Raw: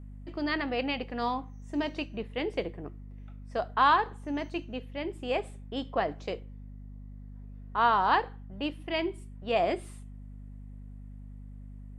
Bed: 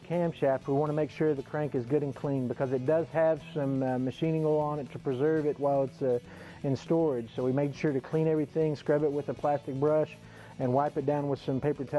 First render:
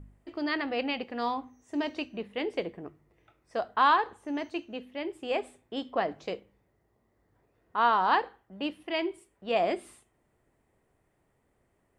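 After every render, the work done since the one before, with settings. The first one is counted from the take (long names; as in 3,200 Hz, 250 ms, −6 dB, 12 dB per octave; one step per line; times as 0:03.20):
hum removal 50 Hz, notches 5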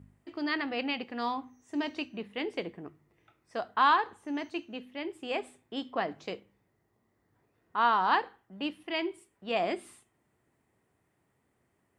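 high-pass filter 92 Hz 12 dB per octave
parametric band 550 Hz −5 dB 0.96 octaves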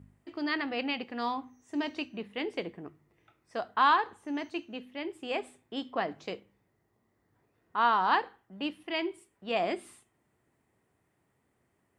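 no processing that can be heard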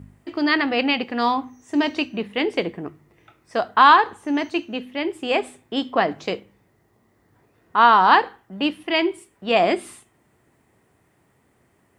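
level +12 dB
brickwall limiter −3 dBFS, peak gain reduction 1.5 dB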